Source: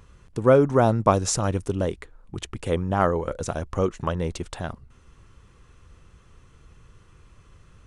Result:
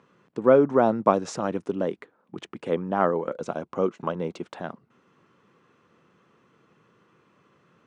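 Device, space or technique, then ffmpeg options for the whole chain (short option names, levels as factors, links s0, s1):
through cloth: -filter_complex "[0:a]asettb=1/sr,asplit=3[s0][s1][s2];[s0]atrim=end=3.374[s3];[s1]atrim=start=3.37:end=4.43,asetpts=PTS-STARTPTS,afade=t=in:d=0.004:c=qsin,afade=t=out:st=1.056:d=0.004:c=qsin,bandreject=f=1800:w=6.8[s4];[s2]atrim=start=4.426[s5];[s3][s4]acrossfade=d=0.004:c1=hsin:c2=qsin[s6];[s6][s5]acrossfade=d=0.004:c1=qsin:c2=hsin,highpass=f=180:w=0.5412,highpass=f=180:w=1.3066,lowpass=7100,highshelf=f=3700:g=-14.5"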